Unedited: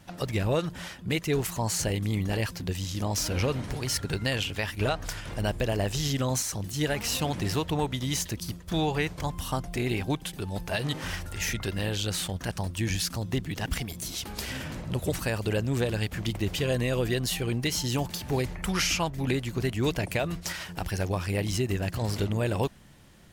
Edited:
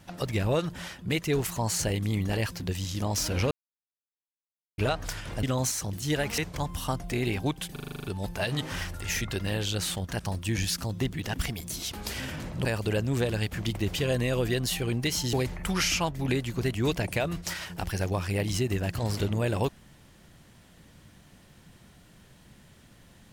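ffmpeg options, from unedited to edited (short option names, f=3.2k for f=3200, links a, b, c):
-filter_complex "[0:a]asplit=15[a][b][c][d][e][f][g][h][i][j][k][l][m][n][o];[a]atrim=end=3.51,asetpts=PTS-STARTPTS,afade=t=out:st=3.506:d=0.004:c=hsin[p];[b]atrim=start=3.51:end=4.78,asetpts=PTS-STARTPTS,volume=0[q];[c]atrim=start=4.78:end=5.432,asetpts=PTS-STARTPTS,afade=t=in:d=0.004:c=hsin[r];[d]atrim=start=6.138:end=7.092[s];[e]atrim=start=9.018:end=10.402[t];[f]atrim=start=10.358:end=10.402[u];[g]atrim=start=10.358:end=10.402[v];[h]atrim=start=10.358:end=10.402[w];[i]atrim=start=10.358:end=10.402[x];[j]atrim=start=10.358:end=10.402[y];[k]atrim=start=10.358:end=10.402[z];[l]atrim=start=10.358:end=10.402[aa];[m]atrim=start=10.358:end=14.972[ab];[n]atrim=start=15.248:end=17.932[ac];[o]atrim=start=18.318[ad];[p][q][r]concat=n=3:v=0:a=1[ae];[ae][s]acrossfade=d=0.004:c1=hsin:c2=hsin[af];[af][t]acrossfade=d=0.004:c1=hsin:c2=hsin[ag];[ag][u]acrossfade=d=0.004:c1=hsin:c2=hsin[ah];[ah][v]acrossfade=d=0.004:c1=hsin:c2=hsin[ai];[ai][w]acrossfade=d=0.004:c1=hsin:c2=hsin[aj];[aj][x]acrossfade=d=0.004:c1=hsin:c2=hsin[ak];[ak][y]acrossfade=d=0.004:c1=hsin:c2=hsin[al];[al][z]acrossfade=d=0.004:c1=hsin:c2=hsin[am];[am][aa]acrossfade=d=0.004:c1=hsin:c2=hsin[an];[an][ab]acrossfade=d=0.004:c1=hsin:c2=hsin[ao];[ao][ac]acrossfade=d=0.004:c1=hsin:c2=hsin[ap];[ap][ad]acrossfade=d=0.004:c1=hsin:c2=hsin"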